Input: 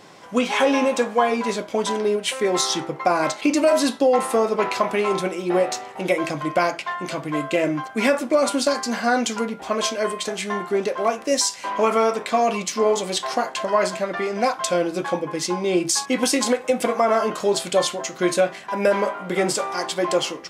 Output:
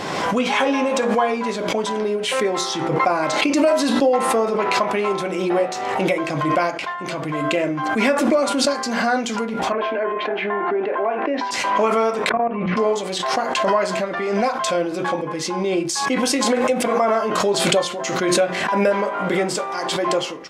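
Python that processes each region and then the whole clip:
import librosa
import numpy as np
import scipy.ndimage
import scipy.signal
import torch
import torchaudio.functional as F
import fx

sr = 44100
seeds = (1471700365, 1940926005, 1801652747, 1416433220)

y = fx.chain(x, sr, fx.cabinet(low_hz=280.0, low_slope=24, high_hz=2200.0, hz=(520.0, 1200.0, 2000.0), db=(-9, -8, -4)),
    fx.env_flatten(amount_pct=70), at=(9.72, 11.51))
y = fx.chain(y, sr, fx.lowpass(hz=2000.0, slope=24),
    fx.low_shelf(hz=160.0, db=5.5),
    fx.level_steps(step_db=18), at=(12.29, 12.77))
y = fx.high_shelf(y, sr, hz=6200.0, db=-8.5)
y = fx.hum_notches(y, sr, base_hz=60, count=9)
y = fx.pre_swell(y, sr, db_per_s=30.0)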